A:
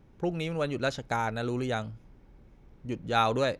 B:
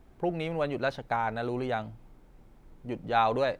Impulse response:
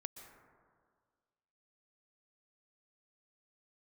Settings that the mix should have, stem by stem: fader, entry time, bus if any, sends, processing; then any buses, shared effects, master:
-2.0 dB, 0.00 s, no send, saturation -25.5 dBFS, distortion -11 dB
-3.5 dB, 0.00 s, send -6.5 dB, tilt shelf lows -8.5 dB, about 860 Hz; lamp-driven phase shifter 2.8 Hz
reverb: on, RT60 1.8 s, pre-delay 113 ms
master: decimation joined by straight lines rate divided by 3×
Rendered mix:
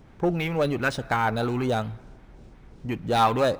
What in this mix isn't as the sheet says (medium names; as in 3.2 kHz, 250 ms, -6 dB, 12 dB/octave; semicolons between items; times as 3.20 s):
stem A -2.0 dB -> +6.5 dB; stem B -3.5 dB -> +3.0 dB